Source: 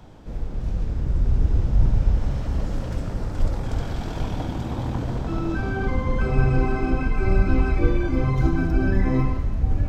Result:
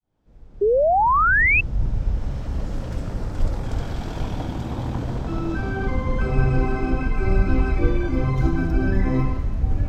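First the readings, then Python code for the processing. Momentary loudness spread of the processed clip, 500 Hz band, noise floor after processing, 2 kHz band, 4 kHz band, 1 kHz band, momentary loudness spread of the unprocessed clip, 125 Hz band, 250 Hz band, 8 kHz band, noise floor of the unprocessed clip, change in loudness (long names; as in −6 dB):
13 LU, +5.0 dB, −43 dBFS, +10.5 dB, −0.5 dB, +9.5 dB, 8 LU, −1.0 dB, 0.0 dB, can't be measured, −31 dBFS, +2.0 dB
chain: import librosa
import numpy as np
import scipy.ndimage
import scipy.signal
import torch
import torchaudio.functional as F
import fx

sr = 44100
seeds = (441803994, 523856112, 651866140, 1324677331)

y = fx.fade_in_head(x, sr, length_s=3.13)
y = fx.spec_paint(y, sr, seeds[0], shape='rise', start_s=0.61, length_s=1.0, low_hz=390.0, high_hz=2700.0, level_db=-17.0)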